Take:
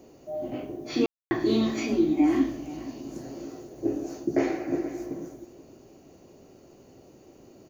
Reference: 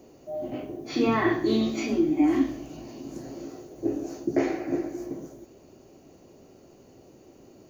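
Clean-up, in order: room tone fill 1.06–1.31 s; inverse comb 479 ms -16.5 dB

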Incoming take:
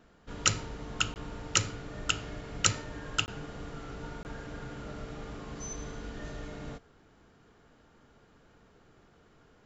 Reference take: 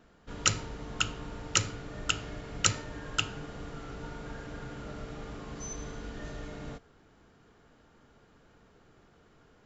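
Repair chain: interpolate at 1.14/3.26/4.23 s, 19 ms

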